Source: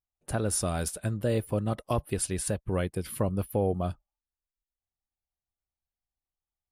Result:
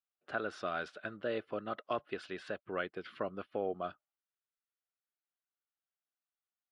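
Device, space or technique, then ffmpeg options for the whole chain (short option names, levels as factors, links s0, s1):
phone earpiece: -af "highpass=450,equalizer=f=510:t=q:w=4:g=-5,equalizer=f=890:t=q:w=4:g=-9,equalizer=f=1400:t=q:w=4:g=7,equalizer=f=2300:t=q:w=4:g=-3,lowpass=f=3500:w=0.5412,lowpass=f=3500:w=1.3066,volume=0.841"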